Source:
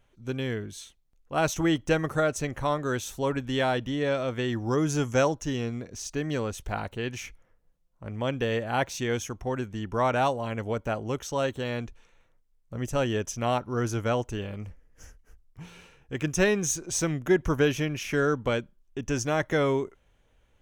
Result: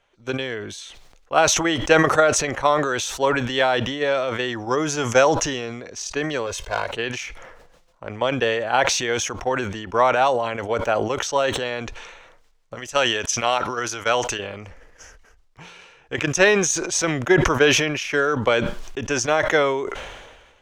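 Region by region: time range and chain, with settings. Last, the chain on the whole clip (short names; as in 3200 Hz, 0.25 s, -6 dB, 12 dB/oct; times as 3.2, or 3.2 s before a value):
6.46–6.87 G.711 law mismatch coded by A + hard clip -26 dBFS + comb 1.9 ms, depth 66%
12.75–14.39 tilt shelf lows -5.5 dB, about 1100 Hz + upward expander, over -37 dBFS
whole clip: three-band isolator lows -15 dB, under 420 Hz, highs -16 dB, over 7300 Hz; transient shaper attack +6 dB, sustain 0 dB; sustainer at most 41 dB/s; gain +6 dB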